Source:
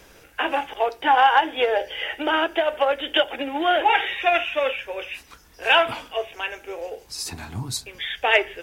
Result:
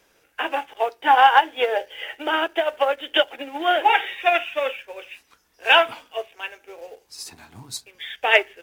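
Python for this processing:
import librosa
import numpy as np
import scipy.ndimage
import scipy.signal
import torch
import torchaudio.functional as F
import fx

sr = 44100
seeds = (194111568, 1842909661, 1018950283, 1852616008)

p1 = fx.low_shelf(x, sr, hz=140.0, db=-12.0)
p2 = fx.quant_dither(p1, sr, seeds[0], bits=6, dither='none')
p3 = p1 + (p2 * 10.0 ** (-12.0 / 20.0))
p4 = fx.upward_expand(p3, sr, threshold_db=-34.0, expansion=1.5)
y = p4 * 10.0 ** (1.5 / 20.0)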